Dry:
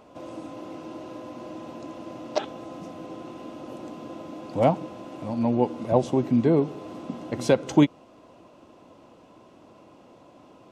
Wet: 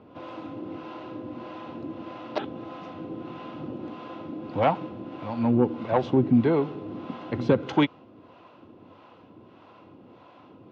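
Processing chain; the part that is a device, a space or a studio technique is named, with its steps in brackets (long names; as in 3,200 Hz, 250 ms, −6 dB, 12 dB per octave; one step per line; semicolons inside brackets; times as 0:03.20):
guitar amplifier with harmonic tremolo (two-band tremolo in antiphase 1.6 Hz, depth 70%, crossover 520 Hz; soft clipping −14 dBFS, distortion −19 dB; loudspeaker in its box 82–3,900 Hz, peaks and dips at 98 Hz +7 dB, 620 Hz −6 dB, 1,400 Hz +3 dB)
0:03.30–0:03.71: parametric band 150 Hz +9 dB 0.82 octaves
level +5 dB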